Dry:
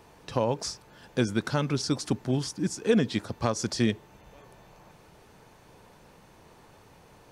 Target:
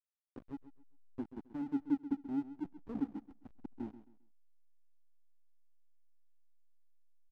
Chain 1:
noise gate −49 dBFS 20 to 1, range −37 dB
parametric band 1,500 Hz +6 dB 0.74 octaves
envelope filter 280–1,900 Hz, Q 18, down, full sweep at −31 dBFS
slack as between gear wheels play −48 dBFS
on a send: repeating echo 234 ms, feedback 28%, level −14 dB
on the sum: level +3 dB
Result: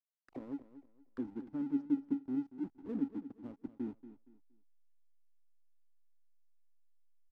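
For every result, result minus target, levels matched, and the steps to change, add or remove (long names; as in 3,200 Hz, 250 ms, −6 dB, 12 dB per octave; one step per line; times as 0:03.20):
echo 101 ms late; slack as between gear wheels: distortion −9 dB
change: repeating echo 133 ms, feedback 28%, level −14 dB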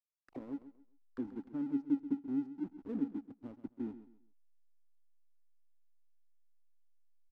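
slack as between gear wheels: distortion −9 dB
change: slack as between gear wheels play −37 dBFS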